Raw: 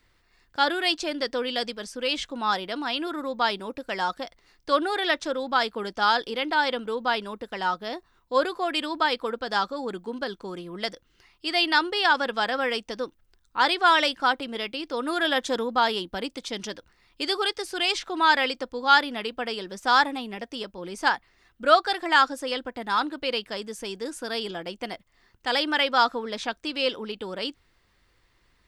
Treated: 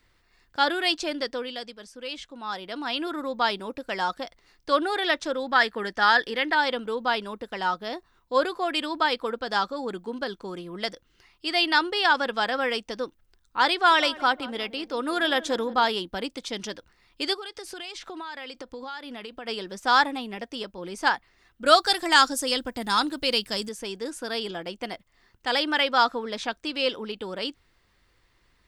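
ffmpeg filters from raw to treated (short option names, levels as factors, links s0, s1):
-filter_complex "[0:a]asettb=1/sr,asplit=3[s0][s1][s2];[s0]atrim=end=5.514[s3];[s1]atrim=start=5.51:end=6.55,asetpts=PTS-STARTPTS,afade=t=in:d=0.004:c=qsin,afade=t=out:st=1.036:d=0.004:c=qsin,equalizer=f=1800:w=4.6:g=13.5[s4];[s2]atrim=start=6.546[s5];[s3][s4]acrossfade=d=0.004:c1=hsin:c2=qsin[s6];[s6][s5]acrossfade=d=0.004:c1=qsin:c2=hsin,asettb=1/sr,asplit=3[s7][s8][s9];[s7]atrim=end=13.684[s10];[s8]atrim=start=13.68:end=15.85,asetpts=PTS-STARTPTS,afade=t=in:d=0.004:c=qsin,afade=t=out:st=2.166:d=0.004:c=qsin,asplit=2[s11][s12];[s12]adelay=177,lowpass=f=960:p=1,volume=0.178,asplit=2[s13][s14];[s14]adelay=177,lowpass=f=960:p=1,volume=0.51,asplit=2[s15][s16];[s16]adelay=177,lowpass=f=960:p=1,volume=0.51,asplit=2[s17][s18];[s18]adelay=177,lowpass=f=960:p=1,volume=0.51,asplit=2[s19][s20];[s20]adelay=177,lowpass=f=960:p=1,volume=0.51[s21];[s11][s13][s15][s17][s19][s21]amix=inputs=6:normalize=0,atrim=end_sample=95697[s22];[s9]atrim=start=15.846[s23];[s10][s22]acrossfade=d=0.004:c1=hsin:c2=qsin[s24];[s24][s23]acrossfade=d=0.004:c1=qsin:c2=hsin,asplit=3[s25][s26][s27];[s25]afade=t=out:st=17.33:d=0.02[s28];[s26]acompressor=threshold=0.02:ratio=8:attack=3.2:release=140:knee=1:detection=peak,afade=t=in:st=17.33:d=0.02,afade=t=out:st=19.47:d=0.02[s29];[s27]afade=t=in:st=19.47:d=0.02[s30];[s28][s29][s30]amix=inputs=3:normalize=0,asettb=1/sr,asplit=3[s31][s32][s33];[s31]atrim=end=21.664[s34];[s32]atrim=start=21.66:end=23.69,asetpts=PTS-STARTPTS,afade=t=in:d=0.004:c=qsin,afade=t=out:st=2.026:d=0.004:c=qsin,bass=f=250:g=8,treble=f=4000:g=14[s35];[s33]atrim=start=23.686[s36];[s34][s35]acrossfade=d=0.004:c1=hsin:c2=qsin[s37];[s37][s36]acrossfade=d=0.004:c1=qsin:c2=hsin,asplit=3[s38][s39][s40];[s38]atrim=end=1.61,asetpts=PTS-STARTPTS,afade=t=out:st=1.12:d=0.49:silence=0.375837[s41];[s39]atrim=start=1.61:end=2.49,asetpts=PTS-STARTPTS,volume=0.376[s42];[s40]atrim=start=2.49,asetpts=PTS-STARTPTS,afade=t=in:d=0.49:silence=0.375837[s43];[s41][s42][s43]concat=n=3:v=0:a=1"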